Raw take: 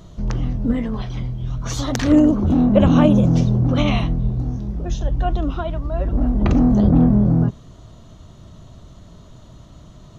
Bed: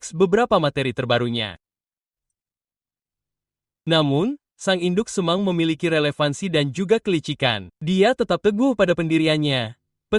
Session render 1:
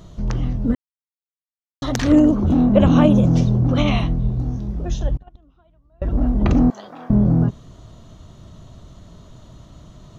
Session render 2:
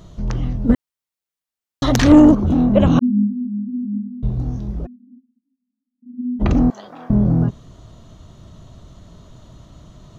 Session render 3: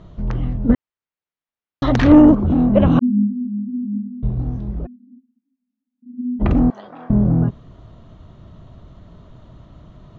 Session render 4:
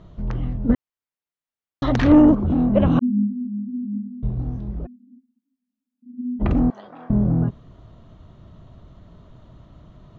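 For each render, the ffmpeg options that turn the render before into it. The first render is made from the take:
ffmpeg -i in.wav -filter_complex "[0:a]asettb=1/sr,asplit=3[link_01][link_02][link_03];[link_01]atrim=end=5.174[link_04];[link_02]atrim=start=5.17:end=6.02,asetpts=PTS-STARTPTS,afade=type=in:duration=0.004:curve=qsin,afade=type=out:start_time=0.846:duration=0.004:curve=qsin,agate=range=-32dB:threshold=-14dB:ratio=16:release=100:detection=peak[link_05];[link_03]atrim=start=6.016[link_06];[link_04][link_05]acrossfade=duration=0.004:curve1=hsin:curve2=qsin[link_07];[link_07][link_06]acrossfade=duration=0.004:curve1=qsin:curve2=hsin,asettb=1/sr,asplit=3[link_08][link_09][link_10];[link_08]atrim=end=6.704[link_11];[link_09]atrim=start=6.7:end=7.1,asetpts=PTS-STARTPTS,afade=type=in:duration=0.004:curve=qsin,afade=type=out:start_time=0.396:duration=0.004:curve=qsin,highpass=1200[link_12];[link_10]atrim=start=7.096[link_13];[link_11][link_12]acrossfade=duration=0.004:curve1=hsin:curve2=qsin[link_14];[link_14][link_13]acrossfade=duration=0.004:curve1=qsin:curve2=hsin,asplit=3[link_15][link_16][link_17];[link_15]atrim=end=0.75,asetpts=PTS-STARTPTS,afade=type=out:start_time=0.746:duration=0.004:curve=hsin[link_18];[link_16]atrim=start=0.75:end=1.82,asetpts=PTS-STARTPTS,volume=0[link_19];[link_17]atrim=start=1.82,asetpts=PTS-STARTPTS,afade=type=in:duration=0.004:curve=hsin[link_20];[link_18][link_19][link_20]concat=n=3:v=0:a=1" out.wav
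ffmpeg -i in.wav -filter_complex "[0:a]asettb=1/sr,asplit=3[link_01][link_02][link_03];[link_01]atrim=end=0.694[link_04];[link_02]atrim=start=0.69:end=2.35,asetpts=PTS-STARTPTS,afade=type=in:duration=0.004:curve=qsin,afade=type=out:start_time=1.656:duration=0.004:curve=qsin,acontrast=85[link_05];[link_03]atrim=start=2.346[link_06];[link_04][link_05]acrossfade=duration=0.004:curve1=hsin:curve2=qsin[link_07];[link_07][link_06]acrossfade=duration=0.004:curve1=qsin:curve2=hsin,asettb=1/sr,asplit=3[link_08][link_09][link_10];[link_08]atrim=end=2.994[link_11];[link_09]atrim=start=2.99:end=4.23,asetpts=PTS-STARTPTS,afade=type=in:duration=0.004:curve=qsin,afade=type=out:start_time=1.236:duration=0.004:curve=qsin,asuperpass=centerf=230:order=20:qfactor=3.4[link_12];[link_10]atrim=start=4.226[link_13];[link_11][link_12]acrossfade=duration=0.004:curve1=hsin:curve2=qsin[link_14];[link_14][link_13]acrossfade=duration=0.004:curve1=qsin:curve2=hsin,asplit=3[link_15][link_16][link_17];[link_15]afade=type=out:start_time=4.85:duration=0.02[link_18];[link_16]asuperpass=centerf=240:order=8:qfactor=5.3,afade=type=in:start_time=4.85:duration=0.02,afade=type=out:start_time=6.39:duration=0.02[link_19];[link_17]afade=type=in:start_time=6.39:duration=0.02[link_20];[link_18][link_19][link_20]amix=inputs=3:normalize=0" out.wav
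ffmpeg -i in.wav -af "lowpass=2700" out.wav
ffmpeg -i in.wav -af "volume=-3.5dB" out.wav

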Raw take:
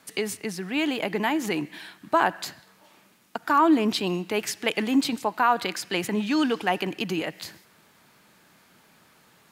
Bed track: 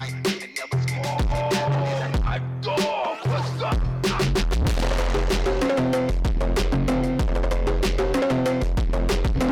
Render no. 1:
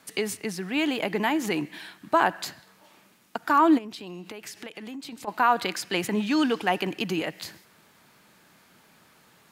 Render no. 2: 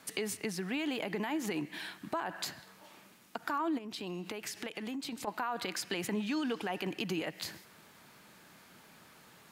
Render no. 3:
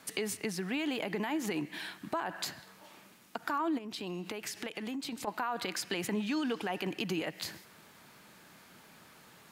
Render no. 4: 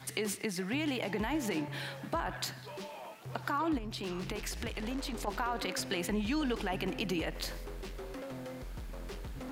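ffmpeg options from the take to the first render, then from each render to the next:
ffmpeg -i in.wav -filter_complex "[0:a]asplit=3[link_01][link_02][link_03];[link_01]afade=type=out:start_time=3.77:duration=0.02[link_04];[link_02]acompressor=threshold=-36dB:ratio=8:attack=3.2:release=140:knee=1:detection=peak,afade=type=in:start_time=3.77:duration=0.02,afade=type=out:start_time=5.27:duration=0.02[link_05];[link_03]afade=type=in:start_time=5.27:duration=0.02[link_06];[link_04][link_05][link_06]amix=inputs=3:normalize=0" out.wav
ffmpeg -i in.wav -af "alimiter=limit=-18dB:level=0:latency=1:release=40,acompressor=threshold=-35dB:ratio=2.5" out.wav
ffmpeg -i in.wav -af "volume=1dB" out.wav
ffmpeg -i in.wav -i bed.wav -filter_complex "[1:a]volume=-21.5dB[link_01];[0:a][link_01]amix=inputs=2:normalize=0" out.wav

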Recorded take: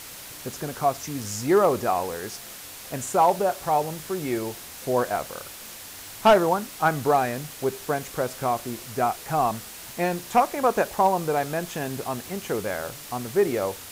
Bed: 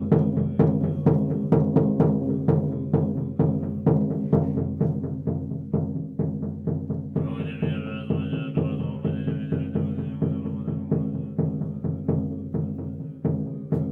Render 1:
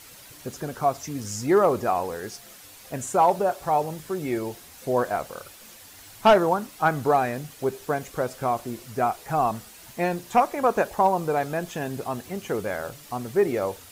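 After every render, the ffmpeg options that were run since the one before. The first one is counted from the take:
ffmpeg -i in.wav -af "afftdn=noise_reduction=8:noise_floor=-41" out.wav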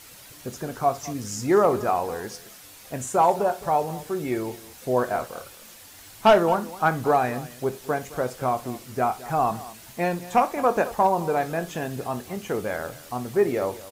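ffmpeg -i in.wav -filter_complex "[0:a]asplit=2[link_01][link_02];[link_02]adelay=24,volume=-13dB[link_03];[link_01][link_03]amix=inputs=2:normalize=0,aecho=1:1:62|215:0.133|0.133" out.wav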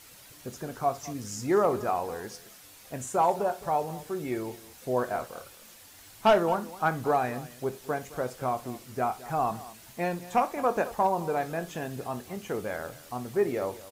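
ffmpeg -i in.wav -af "volume=-5dB" out.wav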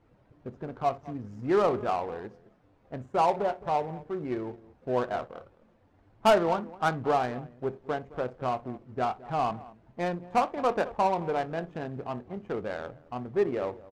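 ffmpeg -i in.wav -af "adynamicsmooth=sensitivity=3.5:basefreq=660" out.wav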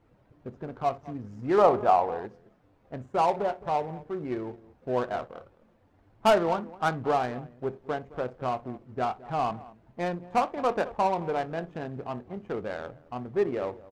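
ffmpeg -i in.wav -filter_complex "[0:a]asettb=1/sr,asplit=3[link_01][link_02][link_03];[link_01]atrim=end=1.584[link_04];[link_02]atrim=start=1.58:end=2.26,asetpts=PTS-STARTPTS,afade=type=in:duration=0.004:curve=qsin,afade=type=out:start_time=0.676:duration=0.004:curve=qsin,equalizer=frequency=770:width=1.2:gain=9[link_05];[link_03]atrim=start=2.256[link_06];[link_04][link_05]acrossfade=duration=0.004:curve1=hsin:curve2=qsin[link_07];[link_07][link_06]acrossfade=duration=0.004:curve1=qsin:curve2=hsin" out.wav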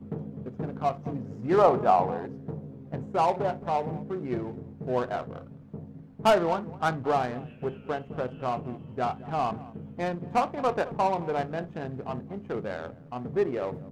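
ffmpeg -i in.wav -i bed.wav -filter_complex "[1:a]volume=-16dB[link_01];[0:a][link_01]amix=inputs=2:normalize=0" out.wav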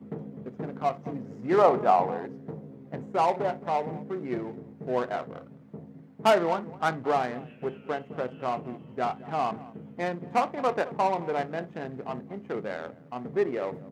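ffmpeg -i in.wav -af "highpass=170,equalizer=frequency=2000:width_type=o:width=0.29:gain=5" out.wav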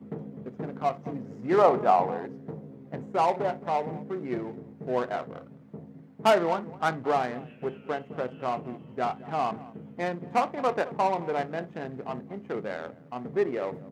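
ffmpeg -i in.wav -af anull out.wav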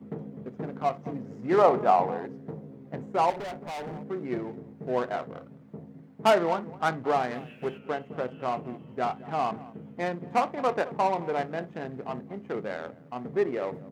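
ffmpeg -i in.wav -filter_complex "[0:a]asettb=1/sr,asplit=3[link_01][link_02][link_03];[link_01]atrim=end=3.304[link_04];[link_02]atrim=start=3.3:end=4.04,asetpts=PTS-STARTPTS,afade=type=in:duration=0.004:curve=qsin,afade=type=out:start_time=0.736:duration=0.004:curve=qsin,asoftclip=type=hard:threshold=-34dB[link_05];[link_03]atrim=start=4.036[link_06];[link_04][link_05]acrossfade=duration=0.004:curve1=hsin:curve2=qsin[link_07];[link_07][link_06]acrossfade=duration=0.004:curve1=qsin:curve2=hsin,asplit=3[link_08][link_09][link_10];[link_08]afade=type=out:start_time=7.3:duration=0.02[link_11];[link_09]highshelf=frequency=2200:gain=9.5,afade=type=in:start_time=7.3:duration=0.02,afade=type=out:start_time=7.77:duration=0.02[link_12];[link_10]afade=type=in:start_time=7.77:duration=0.02[link_13];[link_11][link_12][link_13]amix=inputs=3:normalize=0" out.wav

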